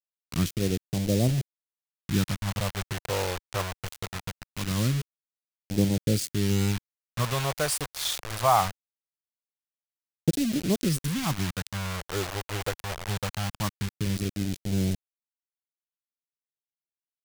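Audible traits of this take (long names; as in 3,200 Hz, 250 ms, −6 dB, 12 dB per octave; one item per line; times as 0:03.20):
a quantiser's noise floor 6 bits, dither none
phaser sweep stages 2, 0.22 Hz, lowest notch 210–1,100 Hz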